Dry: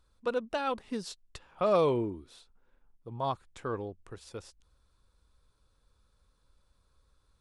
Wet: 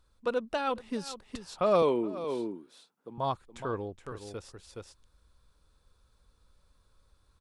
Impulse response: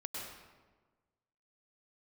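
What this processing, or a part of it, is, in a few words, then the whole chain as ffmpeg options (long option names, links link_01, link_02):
ducked delay: -filter_complex "[0:a]asettb=1/sr,asplit=3[link_01][link_02][link_03];[link_01]atrim=end=1.824[link_04];[link_02]atrim=start=1.82:end=3.18,asetpts=PTS-STARTPTS,afade=type=in:duration=0.004:curve=qsin,afade=type=out:start_time=1.356:duration=0.004:curve=qsin,highpass=frequency=180:width=0.5412,highpass=frequency=180:width=1.3066[link_05];[link_03]atrim=start=3.176[link_06];[link_04][link_05]acrossfade=duration=0.004:curve1=hsin:curve2=qsin[link_07];[link_07][link_06]acrossfade=duration=0.004:curve1=qsin:curve2=hsin,asplit=3[link_08][link_09][link_10];[link_09]adelay=420,volume=-2.5dB[link_11];[link_10]apad=whole_len=345077[link_12];[link_11][link_12]sidechaincompress=threshold=-53dB:ratio=4:attack=16:release=189[link_13];[link_08][link_13]amix=inputs=2:normalize=0,volume=1dB"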